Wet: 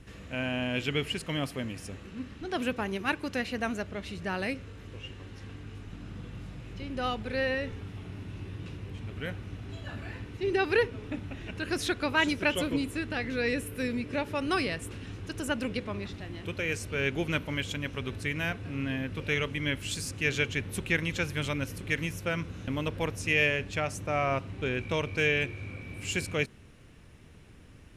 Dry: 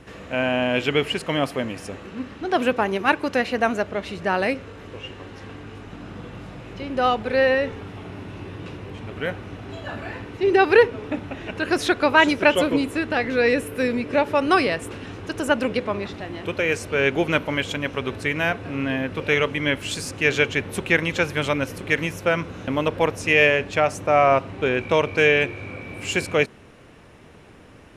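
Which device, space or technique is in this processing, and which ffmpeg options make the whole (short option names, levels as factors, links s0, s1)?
smiley-face EQ: -af "lowshelf=f=110:g=8.5,equalizer=f=720:t=o:w=2.3:g=-8,highshelf=f=8100:g=4,volume=0.501"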